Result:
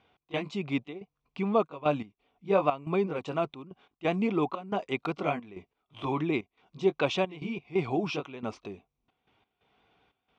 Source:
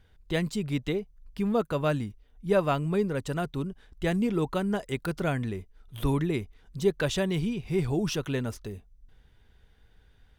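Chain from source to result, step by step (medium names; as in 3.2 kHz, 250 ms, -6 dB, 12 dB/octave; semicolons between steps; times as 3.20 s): sawtooth pitch modulation -1 st, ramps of 204 ms; cabinet simulation 200–5200 Hz, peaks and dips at 300 Hz +3 dB, 740 Hz +9 dB, 1.1 kHz +9 dB, 1.7 kHz -10 dB, 2.4 kHz +9 dB, 4.7 kHz -5 dB; trance gate "x.xxx.xxxx." 89 bpm -12 dB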